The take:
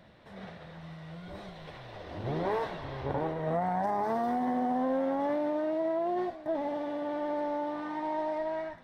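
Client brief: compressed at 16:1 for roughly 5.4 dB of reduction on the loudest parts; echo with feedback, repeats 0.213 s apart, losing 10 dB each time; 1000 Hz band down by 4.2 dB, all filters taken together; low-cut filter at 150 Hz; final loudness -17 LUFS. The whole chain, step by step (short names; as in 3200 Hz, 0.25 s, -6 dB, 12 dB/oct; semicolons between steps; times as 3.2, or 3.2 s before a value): HPF 150 Hz; bell 1000 Hz -6 dB; compressor 16:1, threshold -33 dBFS; feedback echo 0.213 s, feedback 32%, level -10 dB; gain +21.5 dB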